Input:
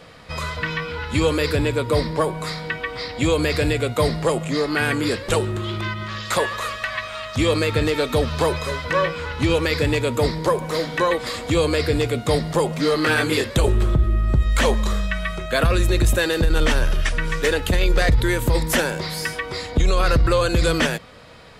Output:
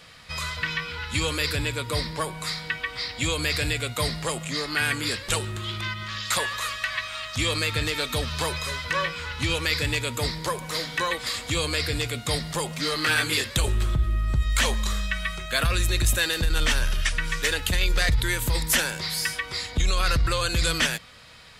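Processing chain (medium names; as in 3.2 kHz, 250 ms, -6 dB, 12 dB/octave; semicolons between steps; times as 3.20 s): amplifier tone stack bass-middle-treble 5-5-5; trim +8.5 dB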